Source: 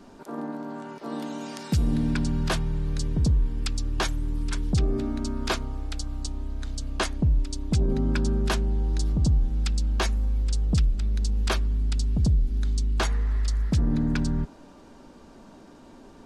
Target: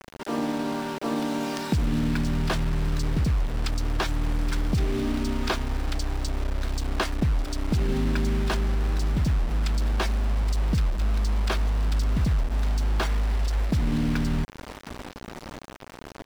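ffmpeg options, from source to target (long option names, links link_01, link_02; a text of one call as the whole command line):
ffmpeg -i in.wav -filter_complex "[0:a]acompressor=threshold=-30dB:ratio=4,asplit=2[link_01][link_02];[link_02]adelay=1142,lowpass=frequency=2700:poles=1,volume=-20dB,asplit=2[link_03][link_04];[link_04]adelay=1142,lowpass=frequency=2700:poles=1,volume=0.32,asplit=2[link_05][link_06];[link_06]adelay=1142,lowpass=frequency=2700:poles=1,volume=0.32[link_07];[link_03][link_05][link_07]amix=inputs=3:normalize=0[link_08];[link_01][link_08]amix=inputs=2:normalize=0,acrusher=bits=6:mix=0:aa=0.000001,highshelf=frequency=7600:gain=-11.5,bandreject=frequency=6600:width=26,volume=7.5dB" out.wav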